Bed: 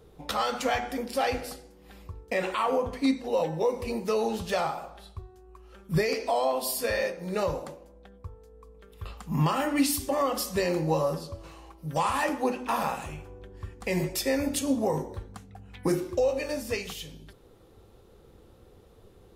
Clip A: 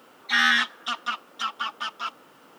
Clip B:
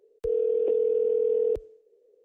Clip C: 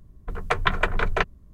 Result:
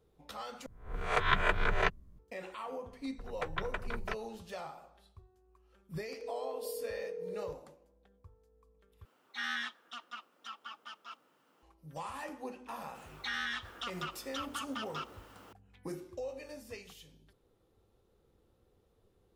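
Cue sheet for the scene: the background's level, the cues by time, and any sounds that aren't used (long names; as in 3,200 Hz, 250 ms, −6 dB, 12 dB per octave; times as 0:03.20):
bed −15.5 dB
0:00.66: overwrite with C −8.5 dB + peak hold with a rise ahead of every peak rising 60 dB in 0.44 s
0:02.91: mix in C −15.5 dB
0:05.97: mix in B −13.5 dB + Butterworth high-pass 470 Hz
0:09.05: overwrite with A −17 dB
0:12.95: mix in A −3 dB + downward compressor 3 to 1, threshold −35 dBFS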